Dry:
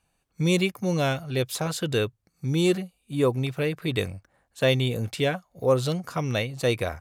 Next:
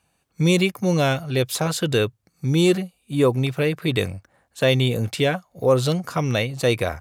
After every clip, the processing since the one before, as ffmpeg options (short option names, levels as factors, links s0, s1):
-filter_complex "[0:a]highpass=63,asplit=2[s0][s1];[s1]alimiter=limit=0.168:level=0:latency=1,volume=0.841[s2];[s0][s2]amix=inputs=2:normalize=0"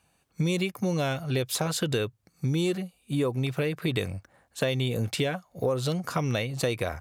-af "acompressor=threshold=0.0631:ratio=6"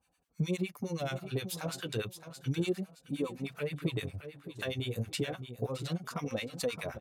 -filter_complex "[0:a]asplit=2[s0][s1];[s1]aecho=0:1:617|1234|1851:0.282|0.0789|0.0221[s2];[s0][s2]amix=inputs=2:normalize=0,acrossover=split=920[s3][s4];[s3]aeval=exprs='val(0)*(1-1/2+1/2*cos(2*PI*9.6*n/s))':c=same[s5];[s4]aeval=exprs='val(0)*(1-1/2-1/2*cos(2*PI*9.6*n/s))':c=same[s6];[s5][s6]amix=inputs=2:normalize=0,flanger=delay=3.8:depth=6.7:regen=-27:speed=0.31:shape=sinusoidal"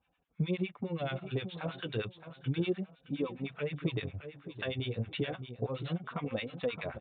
-af "aresample=8000,aresample=44100"